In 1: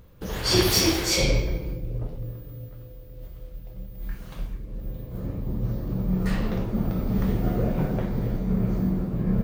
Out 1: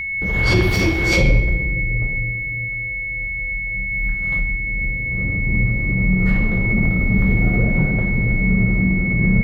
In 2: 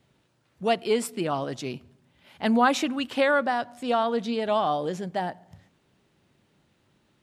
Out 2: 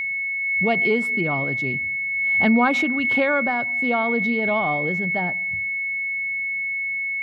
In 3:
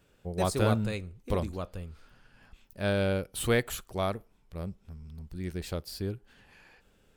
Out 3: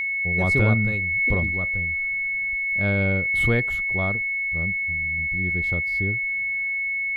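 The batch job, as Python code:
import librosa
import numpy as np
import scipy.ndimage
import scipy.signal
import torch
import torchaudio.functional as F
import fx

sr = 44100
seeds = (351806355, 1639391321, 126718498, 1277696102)

y = fx.bass_treble(x, sr, bass_db=8, treble_db=-14)
y = y + 10.0 ** (-23.0 / 20.0) * np.sin(2.0 * np.pi * 2200.0 * np.arange(len(y)) / sr)
y = fx.pre_swell(y, sr, db_per_s=26.0)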